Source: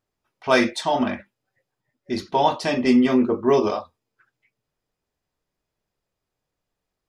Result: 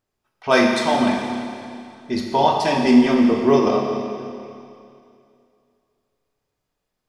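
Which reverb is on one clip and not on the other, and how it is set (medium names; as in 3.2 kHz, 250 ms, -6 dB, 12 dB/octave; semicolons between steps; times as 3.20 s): Schroeder reverb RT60 2.5 s, combs from 29 ms, DRR 1.5 dB; trim +1 dB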